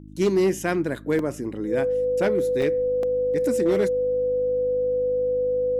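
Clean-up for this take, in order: clip repair -14.5 dBFS; de-hum 51.4 Hz, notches 6; notch 500 Hz, Q 30; interpolate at 1.19/2.62/3.03, 2.4 ms

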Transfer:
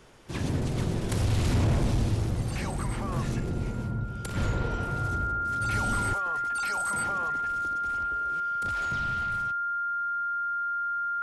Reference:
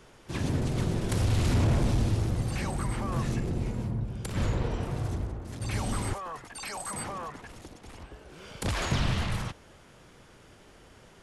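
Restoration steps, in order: notch 1400 Hz, Q 30; gain correction +10.5 dB, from 8.4

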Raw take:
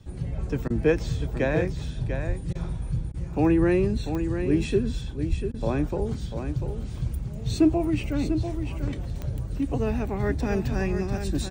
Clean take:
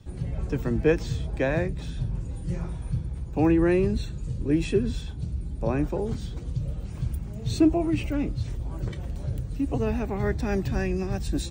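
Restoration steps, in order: de-click; de-plosive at 2.27/5.29; interpolate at 0.68/2.53/3.12/5.52, 20 ms; inverse comb 0.694 s -8 dB

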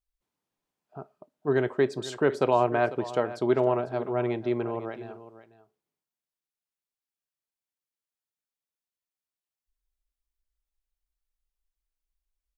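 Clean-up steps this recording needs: inverse comb 0.498 s -15.5 dB

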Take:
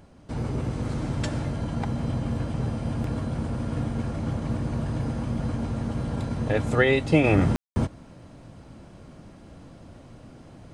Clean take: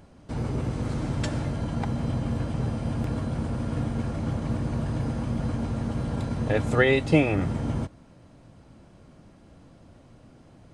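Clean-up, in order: room tone fill 7.56–7.76; gain correction -5.5 dB, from 7.24

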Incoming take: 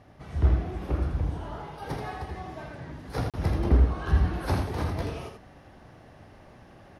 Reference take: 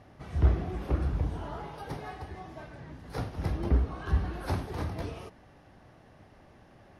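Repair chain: interpolate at 3.3, 37 ms; inverse comb 81 ms -6 dB; gain correction -4 dB, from 1.82

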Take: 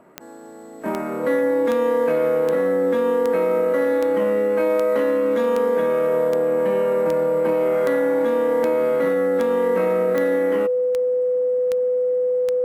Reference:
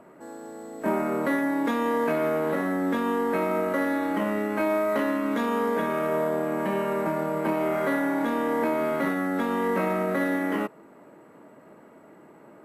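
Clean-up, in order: de-click; notch 500 Hz, Q 30

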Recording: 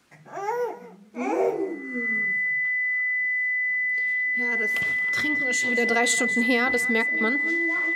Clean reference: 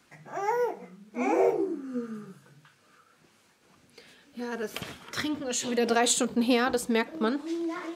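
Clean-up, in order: notch 2000 Hz, Q 30; inverse comb 0.22 s -17 dB

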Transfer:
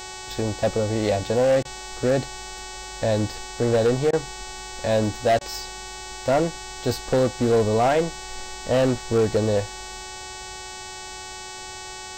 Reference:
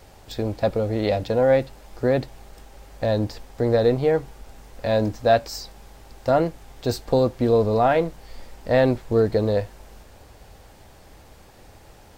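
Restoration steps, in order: clip repair -14 dBFS; de-hum 373.8 Hz, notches 22; notch 850 Hz, Q 30; interpolate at 1.63/4.11/5.39, 19 ms

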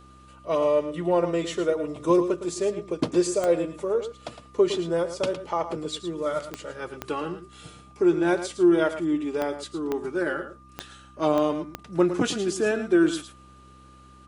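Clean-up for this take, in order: de-click; de-hum 65 Hz, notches 5; notch 1200 Hz, Q 30; inverse comb 0.11 s -11 dB

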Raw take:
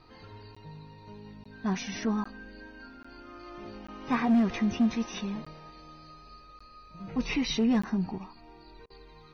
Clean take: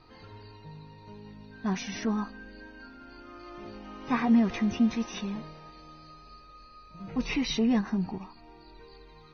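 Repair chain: clip repair -19 dBFS; interpolate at 0.55/1.44/2.24/3.03/3.87/5.45/6.59/7.82, 15 ms; interpolate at 8.86, 40 ms

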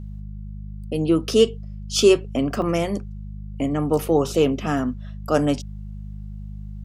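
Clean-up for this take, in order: de-hum 51.1 Hz, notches 4; interpolate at 2.62, 2.8 ms

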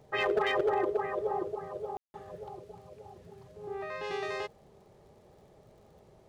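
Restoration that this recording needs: clip repair -21.5 dBFS; de-click; room tone fill 1.97–2.14

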